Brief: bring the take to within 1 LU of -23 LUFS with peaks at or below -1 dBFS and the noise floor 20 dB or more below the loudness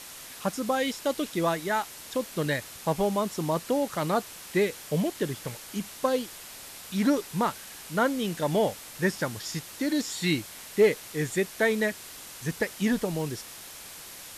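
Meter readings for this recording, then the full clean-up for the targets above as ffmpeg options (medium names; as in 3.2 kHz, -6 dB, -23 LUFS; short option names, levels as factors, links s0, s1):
noise floor -44 dBFS; noise floor target -49 dBFS; loudness -28.5 LUFS; peak level -12.0 dBFS; loudness target -23.0 LUFS
-> -af "afftdn=nr=6:nf=-44"
-af "volume=1.88"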